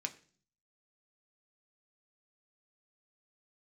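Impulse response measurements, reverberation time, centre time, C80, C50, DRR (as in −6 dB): 0.45 s, 6 ms, 20.0 dB, 16.5 dB, 4.5 dB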